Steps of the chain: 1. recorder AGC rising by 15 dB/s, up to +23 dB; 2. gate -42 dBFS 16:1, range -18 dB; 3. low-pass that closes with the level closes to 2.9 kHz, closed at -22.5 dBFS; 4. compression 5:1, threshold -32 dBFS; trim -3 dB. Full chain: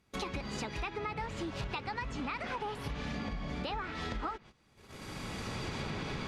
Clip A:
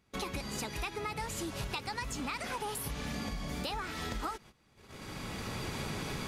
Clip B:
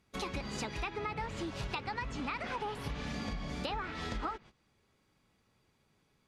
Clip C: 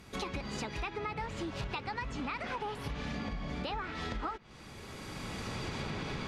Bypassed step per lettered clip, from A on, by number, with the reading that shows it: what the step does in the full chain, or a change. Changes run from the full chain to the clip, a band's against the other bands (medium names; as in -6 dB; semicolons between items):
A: 3, 8 kHz band +9.0 dB; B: 1, crest factor change +3.5 dB; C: 2, momentary loudness spread change +2 LU